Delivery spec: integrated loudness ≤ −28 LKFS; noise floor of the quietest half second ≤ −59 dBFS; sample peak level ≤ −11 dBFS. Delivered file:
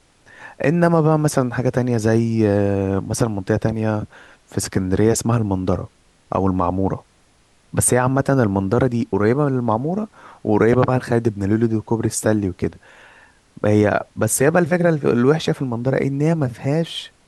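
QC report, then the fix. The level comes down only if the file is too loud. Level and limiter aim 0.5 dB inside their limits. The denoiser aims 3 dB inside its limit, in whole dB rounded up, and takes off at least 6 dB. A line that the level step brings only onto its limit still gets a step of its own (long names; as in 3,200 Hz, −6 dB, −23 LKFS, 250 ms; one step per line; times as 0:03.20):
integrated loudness −19.0 LKFS: out of spec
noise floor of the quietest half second −56 dBFS: out of spec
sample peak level −4.0 dBFS: out of spec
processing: level −9.5 dB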